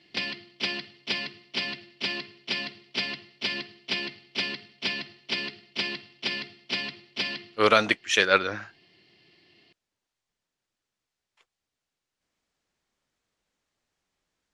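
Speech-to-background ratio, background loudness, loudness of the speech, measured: 9.0 dB, −31.5 LKFS, −22.5 LKFS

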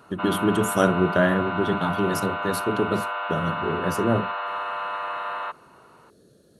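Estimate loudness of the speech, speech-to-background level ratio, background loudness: −25.0 LKFS, 4.0 dB, −29.0 LKFS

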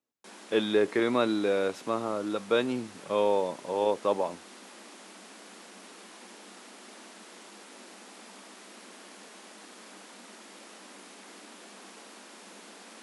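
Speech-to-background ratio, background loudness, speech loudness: 19.5 dB, −48.0 LKFS, −28.5 LKFS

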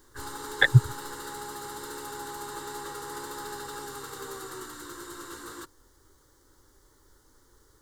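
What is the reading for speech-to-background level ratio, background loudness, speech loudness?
17.0 dB, −39.0 LKFS, −22.0 LKFS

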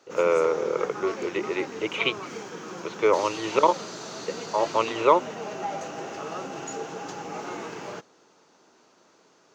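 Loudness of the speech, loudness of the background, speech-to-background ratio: −25.0 LKFS, −36.0 LKFS, 11.0 dB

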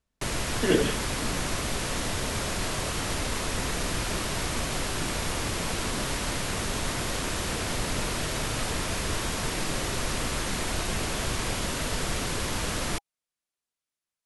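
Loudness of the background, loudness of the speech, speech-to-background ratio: −29.5 LKFS, −27.0 LKFS, 2.5 dB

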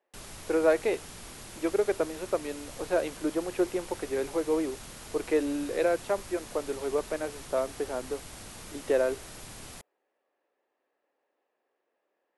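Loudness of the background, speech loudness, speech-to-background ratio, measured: −44.0 LKFS, −30.5 LKFS, 13.5 dB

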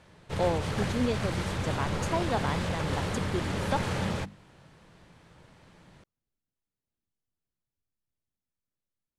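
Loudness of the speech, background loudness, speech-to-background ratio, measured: −33.5 LKFS, −32.0 LKFS, −1.5 dB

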